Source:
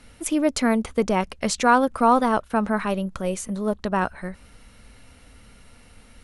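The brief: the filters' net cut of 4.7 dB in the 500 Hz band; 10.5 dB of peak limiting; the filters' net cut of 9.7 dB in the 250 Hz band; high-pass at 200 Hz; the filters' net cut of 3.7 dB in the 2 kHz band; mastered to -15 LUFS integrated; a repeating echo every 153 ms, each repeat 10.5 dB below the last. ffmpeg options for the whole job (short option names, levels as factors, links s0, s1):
-af "highpass=200,equalizer=f=250:t=o:g=-8.5,equalizer=f=500:t=o:g=-3.5,equalizer=f=2000:t=o:g=-5,alimiter=limit=0.112:level=0:latency=1,aecho=1:1:153|306|459:0.299|0.0896|0.0269,volume=6.31"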